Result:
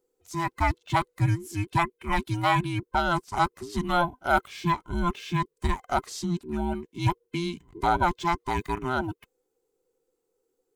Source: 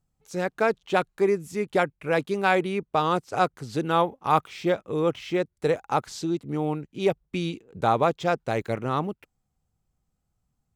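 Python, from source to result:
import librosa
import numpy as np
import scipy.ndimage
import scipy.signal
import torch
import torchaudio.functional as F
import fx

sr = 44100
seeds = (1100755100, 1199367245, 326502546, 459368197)

y = fx.band_invert(x, sr, width_hz=500)
y = fx.high_shelf(y, sr, hz=7300.0, db=7.0)
y = y * librosa.db_to_amplitude(-1.5)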